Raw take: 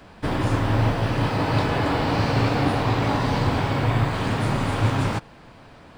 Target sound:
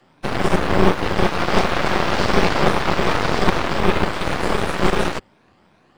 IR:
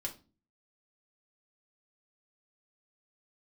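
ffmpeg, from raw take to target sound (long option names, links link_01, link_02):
-af "afftfilt=real='re*pow(10,7/40*sin(2*PI*(1.5*log(max(b,1)*sr/1024/100)/log(2)-(2.7)*(pts-256)/sr)))':imag='im*pow(10,7/40*sin(2*PI*(1.5*log(max(b,1)*sr/1024/100)/log(2)-(2.7)*(pts-256)/sr)))':win_size=1024:overlap=0.75,afreqshift=76,aeval=exprs='0.422*(cos(1*acos(clip(val(0)/0.422,-1,1)))-cos(1*PI/2))+0.106*(cos(3*acos(clip(val(0)/0.422,-1,1)))-cos(3*PI/2))+0.211*(cos(4*acos(clip(val(0)/0.422,-1,1)))-cos(4*PI/2))':channel_layout=same,volume=2dB"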